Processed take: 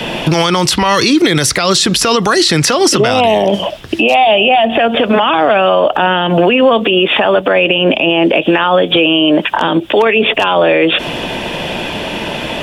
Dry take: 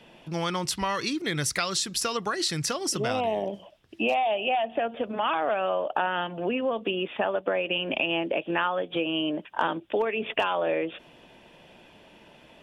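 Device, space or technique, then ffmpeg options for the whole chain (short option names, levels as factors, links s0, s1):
mastering chain: -filter_complex "[0:a]equalizer=f=3500:t=o:w=0.77:g=2,acrossover=split=340|950|3600[s0][s1][s2][s3];[s0]acompressor=threshold=0.00631:ratio=4[s4];[s1]acompressor=threshold=0.0112:ratio=4[s5];[s2]acompressor=threshold=0.00794:ratio=4[s6];[s3]acompressor=threshold=0.00708:ratio=4[s7];[s4][s5][s6][s7]amix=inputs=4:normalize=0,acompressor=threshold=0.0126:ratio=2,alimiter=level_in=47.3:limit=0.891:release=50:level=0:latency=1,volume=0.891"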